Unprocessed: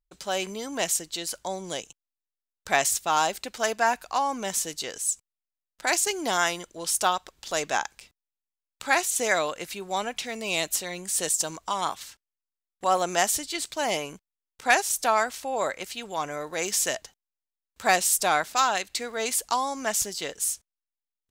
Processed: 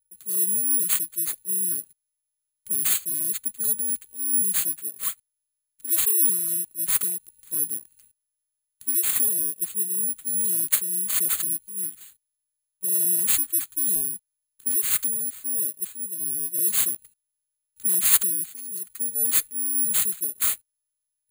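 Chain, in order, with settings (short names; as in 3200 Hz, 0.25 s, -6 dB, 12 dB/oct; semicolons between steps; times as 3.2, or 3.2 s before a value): inverse Chebyshev band-stop 710–7100 Hz, stop band 40 dB; gate -43 dBFS, range -7 dB; careless resampling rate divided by 4×, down none, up zero stuff; EQ curve 200 Hz 0 dB, 830 Hz -5 dB, 1300 Hz +5 dB, 2900 Hz +7 dB, 6400 Hz +13 dB; in parallel at -7 dB: overloaded stage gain 9 dB; on the sum: gain -6 dB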